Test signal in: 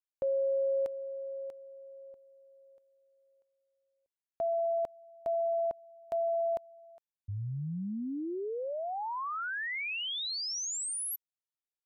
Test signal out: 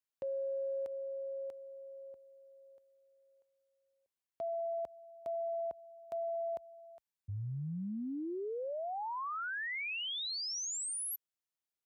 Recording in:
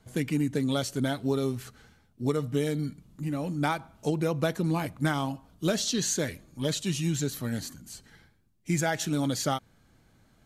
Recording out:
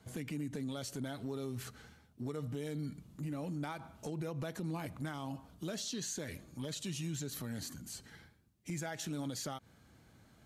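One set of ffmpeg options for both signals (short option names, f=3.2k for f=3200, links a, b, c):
-af "highpass=f=48:w=0.5412,highpass=f=48:w=1.3066,acompressor=threshold=-36dB:ratio=4:attack=0.11:release=90:knee=6:detection=rms"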